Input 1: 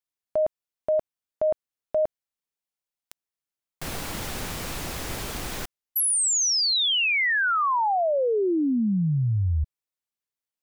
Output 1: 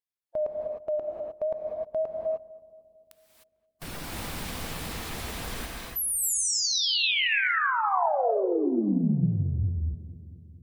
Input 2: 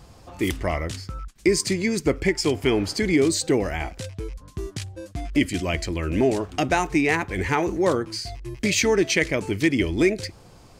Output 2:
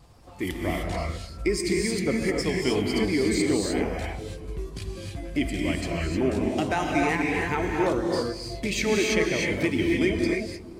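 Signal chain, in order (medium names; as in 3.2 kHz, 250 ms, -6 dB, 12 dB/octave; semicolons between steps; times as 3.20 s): coarse spectral quantiser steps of 15 dB; peaking EQ 6.4 kHz -4 dB 0.43 oct; wow and flutter 2.1 Hz 45 cents; filtered feedback delay 225 ms, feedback 67%, low-pass 860 Hz, level -17 dB; gated-style reverb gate 330 ms rising, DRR -1 dB; trim -5.5 dB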